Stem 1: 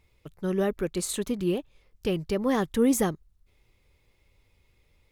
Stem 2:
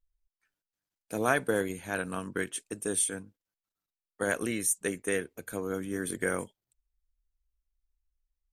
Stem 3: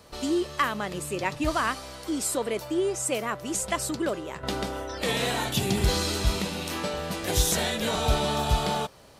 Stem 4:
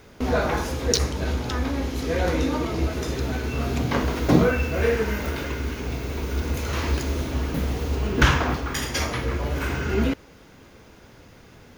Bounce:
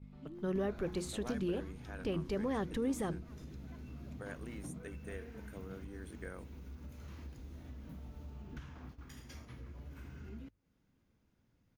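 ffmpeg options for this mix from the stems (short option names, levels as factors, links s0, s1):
-filter_complex "[0:a]bandreject=f=60:t=h:w=6,bandreject=f=120:t=h:w=6,bandreject=f=180:t=h:w=6,bandreject=f=240:t=h:w=6,bandreject=f=300:t=h:w=6,bandreject=f=360:t=h:w=6,aeval=exprs='val(0)+0.00794*(sin(2*PI*50*n/s)+sin(2*PI*2*50*n/s)/2+sin(2*PI*3*50*n/s)/3+sin(2*PI*4*50*n/s)/4+sin(2*PI*5*50*n/s)/5)':c=same,volume=0.631[s0];[1:a]acompressor=threshold=0.0178:ratio=1.5,volume=0.224[s1];[2:a]lowpass=1800,volume=0.158[s2];[3:a]adelay=350,volume=0.266[s3];[s2][s3]amix=inputs=2:normalize=0,firequalizer=gain_entry='entry(230,0);entry(410,-10);entry(13000,7)':delay=0.05:min_phase=1,acompressor=threshold=0.00447:ratio=4,volume=1[s4];[s0][s1]amix=inputs=2:normalize=0,alimiter=level_in=1.41:limit=0.0631:level=0:latency=1:release=95,volume=0.708,volume=1[s5];[s4][s5]amix=inputs=2:normalize=0,agate=range=0.282:threshold=0.00316:ratio=16:detection=peak,aemphasis=mode=reproduction:type=50kf,bandreject=f=50:t=h:w=6,bandreject=f=100:t=h:w=6"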